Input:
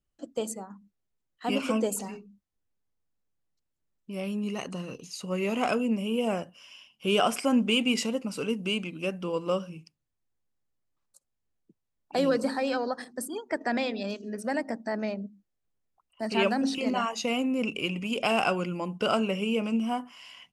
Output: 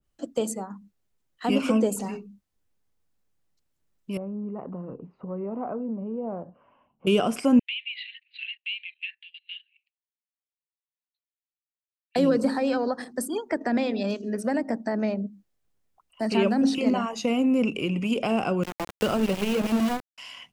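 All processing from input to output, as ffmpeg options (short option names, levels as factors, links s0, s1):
-filter_complex "[0:a]asettb=1/sr,asplit=3[s0][s1][s2];[s0]atrim=end=4.174[s3];[s1]atrim=start=4.17:end=7.07,asetpts=PTS-STARTPTS,afade=t=in:d=0.004:c=qsin,afade=t=out:st=2.896:d=0.004:c=qsin,lowpass=f=1100:w=0.5412,lowpass=f=1100:w=1.3066,acompressor=threshold=0.00708:ratio=2:attack=3.2:release=140:knee=1:detection=peak[s4];[s2]atrim=start=7.066[s5];[s3][s4]acrossfade=d=0.004:c1=hsin:c2=qsin[s6];[s6][s5]acrossfade=d=0.004:c1=qsin:c2=hsin,asettb=1/sr,asplit=3[s7][s8][s9];[s7]atrim=end=7.594[s10];[s8]atrim=start=7.59:end=12.16,asetpts=PTS-STARTPTS,afade=t=in:d=0.004:c=qsin,afade=t=out:st=4.566:d=0.004:c=qsin,asuperpass=centerf=2700:order=20:qfactor=1.1,agate=range=0.126:threshold=0.00224:ratio=16:release=100:detection=peak[s11];[s9]atrim=start=12.156[s12];[s10][s11]acrossfade=d=0.004:c1=hsin:c2=qsin[s13];[s13][s12]acrossfade=d=0.004:c1=qsin:c2=hsin,asettb=1/sr,asplit=3[s14][s15][s16];[s14]atrim=end=18.634[s17];[s15]atrim=start=18.63:end=20.18,asetpts=PTS-STARTPTS,afade=t=in:d=0.004:c=qsin,afade=t=out:st=1.546:d=0.004:c=qsin,bandreject=f=57.52:t=h:w=4,bandreject=f=115.04:t=h:w=4,bandreject=f=172.56:t=h:w=4,bandreject=f=230.08:t=h:w=4,aeval=exprs='val(0)*gte(abs(val(0)),0.0376)':c=same[s18];[s16]atrim=start=20.176[s19];[s17][s18]acrossfade=d=0.004:c1=hsin:c2=qsin[s20];[s20][s19]acrossfade=d=0.004:c1=qsin:c2=hsin,acrossover=split=440[s21][s22];[s22]acompressor=threshold=0.0178:ratio=4[s23];[s21][s23]amix=inputs=2:normalize=0,adynamicequalizer=threshold=0.00316:dfrequency=1800:dqfactor=0.7:tfrequency=1800:tqfactor=0.7:attack=5:release=100:ratio=0.375:range=2:mode=cutabove:tftype=highshelf,volume=2.11"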